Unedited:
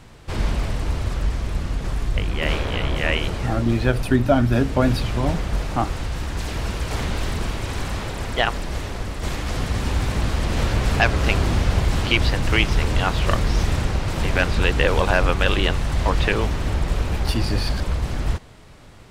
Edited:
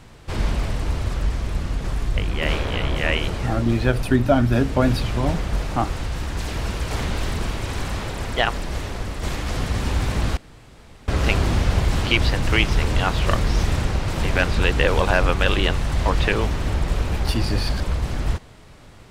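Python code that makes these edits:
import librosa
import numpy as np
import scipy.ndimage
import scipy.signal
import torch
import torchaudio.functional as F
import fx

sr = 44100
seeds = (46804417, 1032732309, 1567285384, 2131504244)

y = fx.edit(x, sr, fx.room_tone_fill(start_s=10.37, length_s=0.71), tone=tone)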